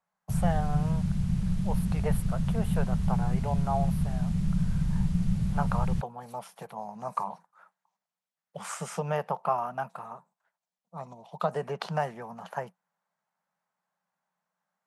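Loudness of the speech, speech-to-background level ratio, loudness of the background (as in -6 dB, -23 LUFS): -35.5 LUFS, -6.0 dB, -29.5 LUFS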